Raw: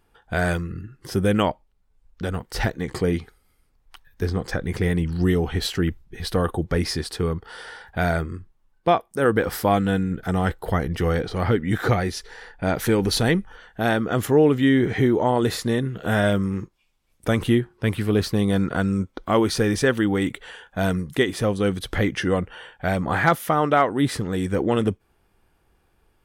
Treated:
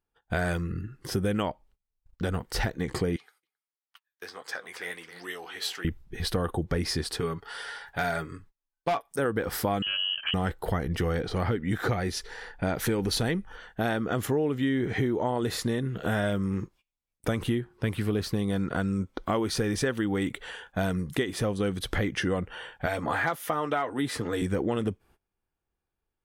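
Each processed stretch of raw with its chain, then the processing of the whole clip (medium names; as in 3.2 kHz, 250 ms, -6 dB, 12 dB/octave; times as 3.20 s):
3.16–5.85 s: high-pass 890 Hz + flange 1.5 Hz, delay 5.8 ms, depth 6.8 ms, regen +59% + delay 268 ms -12.5 dB
7.20–9.19 s: bass shelf 490 Hz -10 dB + comb 7.1 ms, depth 64% + hard clipper -15.5 dBFS
9.82–10.34 s: frequency inversion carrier 3.1 kHz + compression 2.5:1, threshold -24 dBFS
22.86–24.42 s: bass shelf 250 Hz -9.5 dB + comb of notches 190 Hz + three bands compressed up and down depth 40%
whole clip: gate -51 dBFS, range -22 dB; compression 4:1, threshold -25 dBFS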